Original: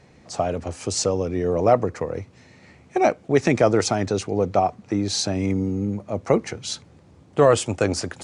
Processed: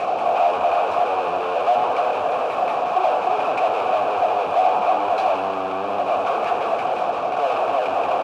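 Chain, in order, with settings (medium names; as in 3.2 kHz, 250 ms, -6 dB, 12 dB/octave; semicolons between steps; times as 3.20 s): spectral levelling over time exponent 0.6; feedback delay 305 ms, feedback 31%, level -12 dB; LFO low-pass saw down 5.6 Hz 460–2300 Hz; in parallel at -3 dB: compressor with a negative ratio -22 dBFS; on the sum: de-hum 145.5 Hz, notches 34; fuzz box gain 37 dB, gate -33 dBFS; vowel filter a; on a send: frequency-shifting echo 81 ms, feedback 58%, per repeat +120 Hz, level -10 dB; on the sum: trim +3 dB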